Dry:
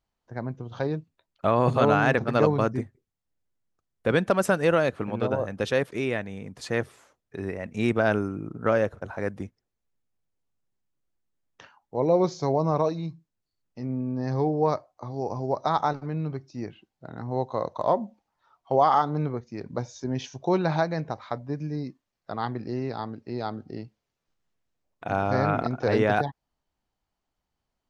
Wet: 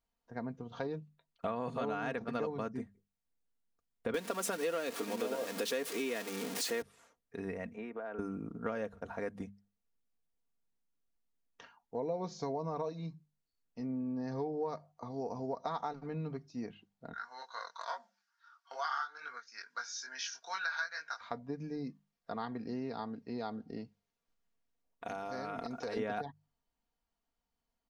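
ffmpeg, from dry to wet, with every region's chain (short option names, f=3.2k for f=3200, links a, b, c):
-filter_complex "[0:a]asettb=1/sr,asplit=3[a][b][c];[a]atrim=end=4.144[d];[b]atrim=start=4.14:end=6.82,asetpts=PTS-STARTPTS,afade=t=in:d=0.004:c=qsin,afade=t=out:st=2.676:d=0.004:c=qsin,aeval=exprs='val(0)+0.5*0.0355*sgn(val(0))':c=same,highpass=f=310:t=q:w=1.9,highshelf=f=2.3k:g=10[e];[c]atrim=start=6.816[f];[d][e]acrossfade=d=0.004:c1=hsin:c2=qsin[g];[g][f]acrossfade=d=0.004:c1=qsin:c2=hsin,asettb=1/sr,asplit=3[h][i][j];[h]atrim=end=7.744[k];[i]atrim=start=7.74:end=8.19,asetpts=PTS-STARTPTS,afade=t=in:d=0.004:c=qsin,afade=t=out:st=0.446:d=0.004:c=qsin,acrossover=split=280 2200:gain=0.112 1 0.0708[l][m][n];[l][m][n]amix=inputs=3:normalize=0,acompressor=threshold=-33dB:ratio=6:attack=3.2:release=140:knee=1:detection=peak[o];[j]atrim=start=8.186[p];[k][o]acrossfade=d=0.004:c1=hsin:c2=qsin[q];[q][p]acrossfade=d=0.004:c1=qsin:c2=hsin,asettb=1/sr,asplit=3[r][s][t];[r]atrim=end=17.134[u];[s]atrim=start=17.13:end=21.21,asetpts=PTS-STARTPTS,afade=t=in:d=0.004:c=qsin,afade=t=out:st=4.076:d=0.004:c=qsin,highpass=f=1.5k:t=q:w=9.9,equalizer=f=5.3k:t=o:w=1:g=14.5,flanger=delay=20:depth=2.7:speed=2.3[v];[t]atrim=start=21.206[w];[u][v]acrossfade=d=0.004:c1=hsin:c2=qsin[x];[x][w]acrossfade=d=0.004:c1=qsin:c2=hsin,asettb=1/sr,asplit=3[y][z][aa];[y]atrim=end=25.044[ab];[z]atrim=start=25.04:end=25.97,asetpts=PTS-STARTPTS,afade=t=in:d=0.004:c=qsin,afade=t=out:st=0.926:d=0.004:c=qsin,bass=f=250:g=-4,treble=f=4k:g=12,acompressor=threshold=-29dB:ratio=5:attack=3.2:release=140:knee=1:detection=peak[ac];[aa]atrim=start=25.966[ad];[ab][ac]acrossfade=d=0.004:c1=hsin:c2=qsin[ae];[ae][ad]acrossfade=d=0.004:c1=qsin:c2=hsin,bandreject=f=50:t=h:w=6,bandreject=f=100:t=h:w=6,bandreject=f=150:t=h:w=6,bandreject=f=200:t=h:w=6,aecho=1:1:4.3:0.54,acompressor=threshold=-28dB:ratio=4,volume=-6.5dB"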